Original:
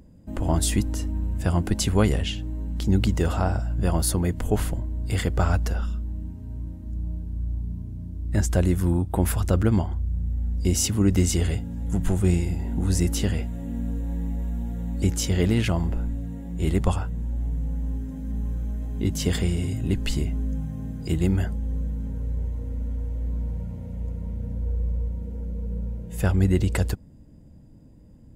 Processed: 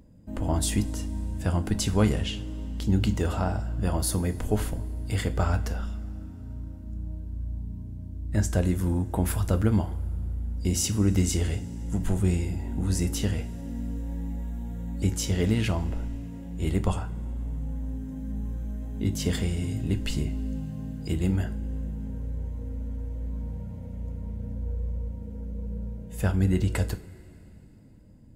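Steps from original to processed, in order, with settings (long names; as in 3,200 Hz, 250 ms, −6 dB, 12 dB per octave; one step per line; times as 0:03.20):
coupled-rooms reverb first 0.29 s, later 3.2 s, from −20 dB, DRR 9 dB
level −3.5 dB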